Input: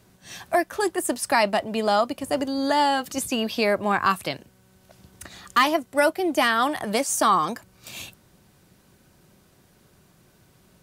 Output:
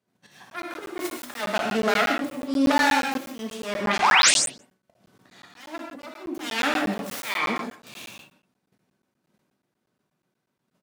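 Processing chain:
phase distortion by the signal itself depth 0.65 ms
high-pass filter 150 Hz 24 dB per octave
noise gate −55 dBFS, range −21 dB
high-shelf EQ 4,800 Hz −8.5 dB
0:04.04–0:06.19: downward compressor 4 to 1, threshold −31 dBFS, peak gain reduction 13 dB
volume swells 276 ms
0:04.02–0:04.31: sound drawn into the spectrogram rise 680–9,800 Hz −19 dBFS
far-end echo of a speakerphone 170 ms, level −20 dB
reverb whose tail is shaped and stops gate 200 ms flat, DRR −1 dB
regular buffer underruns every 0.12 s, samples 512, zero, from 0:00.50

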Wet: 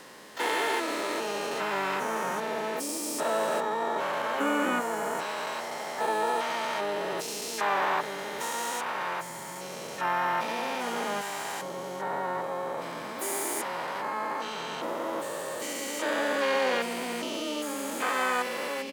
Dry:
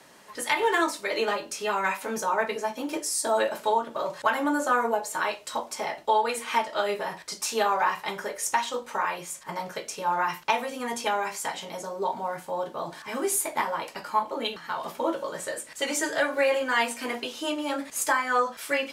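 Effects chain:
spectrum averaged block by block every 400 ms
pitch-shifted copies added −5 semitones −12 dB, +7 semitones −10 dB, +12 semitones −10 dB
level +1 dB

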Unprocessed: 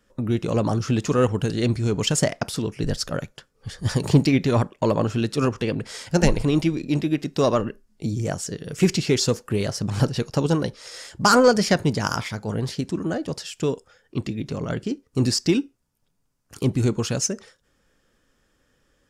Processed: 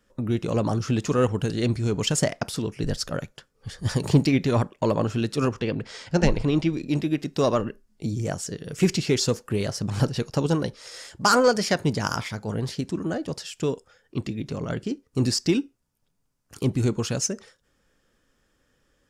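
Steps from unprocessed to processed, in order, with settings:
0:05.59–0:06.73: low-pass filter 5,400 Hz 12 dB per octave
0:11.16–0:11.84: low-shelf EQ 220 Hz −7.5 dB
level −2 dB

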